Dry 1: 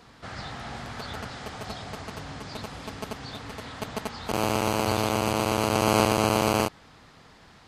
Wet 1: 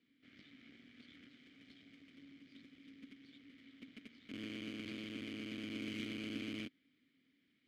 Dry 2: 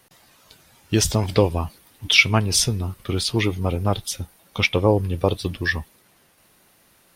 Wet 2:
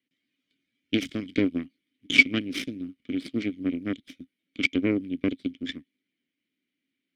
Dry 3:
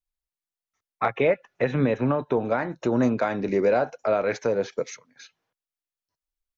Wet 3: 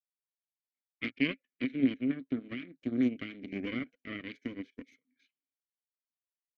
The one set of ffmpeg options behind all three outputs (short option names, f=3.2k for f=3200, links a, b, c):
-filter_complex "[0:a]aeval=exprs='0.891*(cos(1*acos(clip(val(0)/0.891,-1,1)))-cos(1*PI/2))+0.316*(cos(4*acos(clip(val(0)/0.891,-1,1)))-cos(4*PI/2))+0.0282*(cos(5*acos(clip(val(0)/0.891,-1,1)))-cos(5*PI/2))+0.126*(cos(7*acos(clip(val(0)/0.891,-1,1)))-cos(7*PI/2))+0.0398*(cos(8*acos(clip(val(0)/0.891,-1,1)))-cos(8*PI/2))':c=same,asplit=3[a][b][c];[a]bandpass=f=270:t=q:w=8,volume=0dB[d];[b]bandpass=f=2.29k:t=q:w=8,volume=-6dB[e];[c]bandpass=f=3.01k:t=q:w=8,volume=-9dB[f];[d][e][f]amix=inputs=3:normalize=0,volume=5dB"